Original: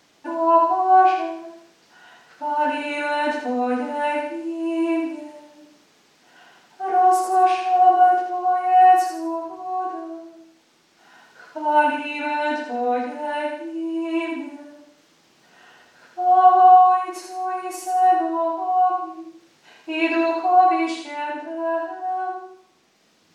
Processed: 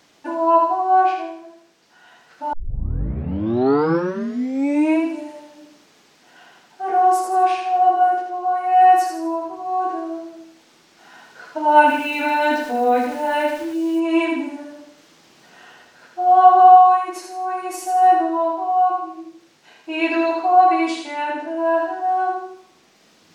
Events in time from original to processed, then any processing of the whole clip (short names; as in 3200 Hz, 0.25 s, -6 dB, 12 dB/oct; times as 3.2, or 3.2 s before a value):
2.53 tape start 2.50 s
11.86–14 sample gate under -40.5 dBFS
whole clip: vocal rider within 5 dB 2 s; gain +1 dB